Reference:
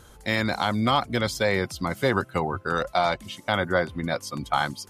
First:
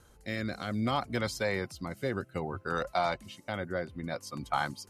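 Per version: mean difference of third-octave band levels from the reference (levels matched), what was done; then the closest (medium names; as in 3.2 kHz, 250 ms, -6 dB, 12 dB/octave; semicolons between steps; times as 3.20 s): 2.0 dB: band-stop 3.4 kHz, Q 8.6; rotary cabinet horn 0.6 Hz; trim -6 dB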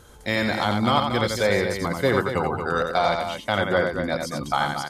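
5.5 dB: peaking EQ 480 Hz +2.5 dB 0.77 oct; on a send: loudspeakers at several distances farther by 30 m -5 dB, 79 m -8 dB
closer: first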